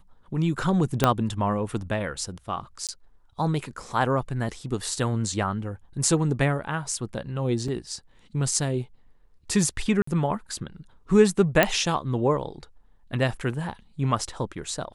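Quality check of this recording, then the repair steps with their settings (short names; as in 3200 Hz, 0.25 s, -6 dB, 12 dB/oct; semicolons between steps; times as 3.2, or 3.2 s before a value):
1.04 pop -4 dBFS
2.87–2.89 gap 17 ms
7.68 gap 3.9 ms
10.02–10.07 gap 54 ms
11.63 pop -4 dBFS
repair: de-click; interpolate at 2.87, 17 ms; interpolate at 7.68, 3.9 ms; interpolate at 10.02, 54 ms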